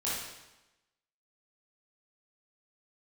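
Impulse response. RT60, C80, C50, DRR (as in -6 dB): 1.0 s, 3.0 dB, -1.5 dB, -8.5 dB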